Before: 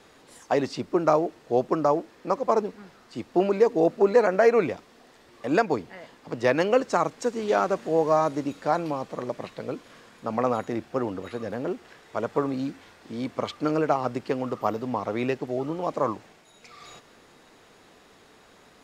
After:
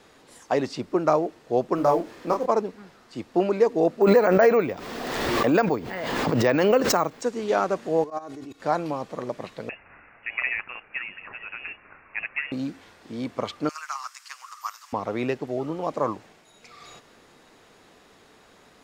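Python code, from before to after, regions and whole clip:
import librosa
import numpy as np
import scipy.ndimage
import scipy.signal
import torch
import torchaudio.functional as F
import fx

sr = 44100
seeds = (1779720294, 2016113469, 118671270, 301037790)

y = fx.chain(x, sr, fx.law_mismatch(coded='mu'),
    fx.doubler(ms=29.0, db=-4), at=(1.75, 2.46))
y = fx.chain(y, sr, fx.high_shelf(hz=5000.0, db=-4.0),
    fx.resample_bad(factor=2, down='none', up='hold'),
    fx.pre_swell(db_per_s=27.0), at=(4.02, 7.22))
y = fx.chain(y, sr, fx.comb(ms=2.7, depth=0.69),
    fx.level_steps(step_db=19),
    fx.auto_swell(attack_ms=151.0), at=(8.04, 8.6))
y = fx.chain(y, sr, fx.highpass(hz=690.0, slope=12),
    fx.high_shelf(hz=2300.0, db=7.5),
    fx.freq_invert(carrier_hz=3100), at=(9.69, 12.52))
y = fx.chain(y, sr, fx.ellip_highpass(hz=1100.0, order=4, stop_db=70),
    fx.high_shelf_res(hz=4500.0, db=9.0, q=1.5), at=(13.69, 14.93))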